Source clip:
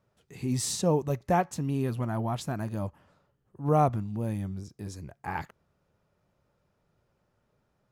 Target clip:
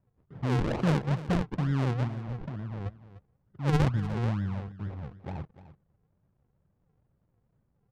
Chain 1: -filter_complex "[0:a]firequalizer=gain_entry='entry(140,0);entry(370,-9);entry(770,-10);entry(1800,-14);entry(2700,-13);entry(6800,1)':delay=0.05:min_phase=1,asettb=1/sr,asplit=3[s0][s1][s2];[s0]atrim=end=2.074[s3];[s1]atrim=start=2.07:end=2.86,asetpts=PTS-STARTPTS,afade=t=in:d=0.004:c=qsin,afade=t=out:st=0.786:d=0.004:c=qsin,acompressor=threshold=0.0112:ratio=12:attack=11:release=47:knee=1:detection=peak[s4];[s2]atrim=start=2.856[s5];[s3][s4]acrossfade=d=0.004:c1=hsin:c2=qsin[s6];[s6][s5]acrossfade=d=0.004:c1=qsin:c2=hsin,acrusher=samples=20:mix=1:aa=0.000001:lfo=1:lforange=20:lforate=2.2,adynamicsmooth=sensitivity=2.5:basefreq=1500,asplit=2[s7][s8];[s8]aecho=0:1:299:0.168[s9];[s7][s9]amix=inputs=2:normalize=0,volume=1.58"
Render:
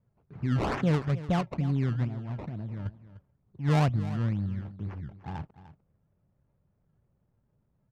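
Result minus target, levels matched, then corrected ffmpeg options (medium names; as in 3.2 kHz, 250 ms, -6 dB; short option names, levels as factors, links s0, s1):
decimation with a swept rate: distortion -6 dB
-filter_complex "[0:a]firequalizer=gain_entry='entry(140,0);entry(370,-9);entry(770,-10);entry(1800,-14);entry(2700,-13);entry(6800,1)':delay=0.05:min_phase=1,asettb=1/sr,asplit=3[s0][s1][s2];[s0]atrim=end=2.074[s3];[s1]atrim=start=2.07:end=2.86,asetpts=PTS-STARTPTS,afade=t=in:d=0.004:c=qsin,afade=t=out:st=0.786:d=0.004:c=qsin,acompressor=threshold=0.0112:ratio=12:attack=11:release=47:knee=1:detection=peak[s4];[s2]atrim=start=2.856[s5];[s3][s4]acrossfade=d=0.004:c1=hsin:c2=qsin[s6];[s6][s5]acrossfade=d=0.004:c1=qsin:c2=hsin,acrusher=samples=50:mix=1:aa=0.000001:lfo=1:lforange=50:lforate=2.2,adynamicsmooth=sensitivity=2.5:basefreq=1500,asplit=2[s7][s8];[s8]aecho=0:1:299:0.168[s9];[s7][s9]amix=inputs=2:normalize=0,volume=1.58"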